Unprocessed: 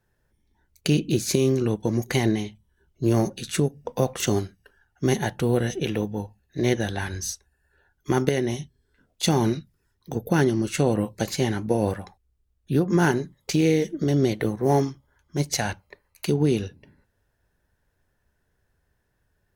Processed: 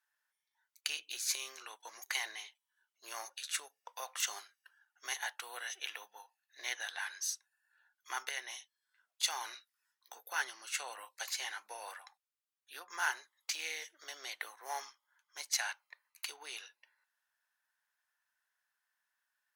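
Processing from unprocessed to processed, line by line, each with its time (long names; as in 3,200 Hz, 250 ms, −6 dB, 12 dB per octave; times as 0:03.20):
0:09.49–0:10.42: double-tracking delay 16 ms −8 dB
whole clip: high-pass filter 1,000 Hz 24 dB per octave; level −6 dB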